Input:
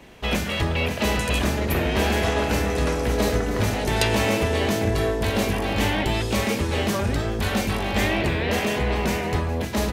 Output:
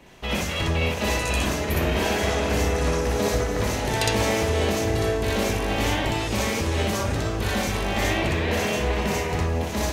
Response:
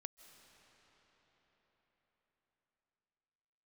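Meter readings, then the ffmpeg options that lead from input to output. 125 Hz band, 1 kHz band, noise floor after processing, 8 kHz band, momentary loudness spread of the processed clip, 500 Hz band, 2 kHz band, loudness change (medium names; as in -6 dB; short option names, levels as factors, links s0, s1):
-1.0 dB, -0.5 dB, -28 dBFS, +2.0 dB, 3 LU, -0.5 dB, -1.0 dB, -1.0 dB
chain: -filter_complex "[0:a]asplit=2[s0][s1];[s1]equalizer=f=250:t=o:w=0.67:g=-5,equalizer=f=1000:t=o:w=0.67:g=3,equalizer=f=6300:t=o:w=0.67:g=7[s2];[1:a]atrim=start_sample=2205,adelay=61[s3];[s2][s3]afir=irnorm=-1:irlink=0,volume=1.78[s4];[s0][s4]amix=inputs=2:normalize=0,volume=0.631"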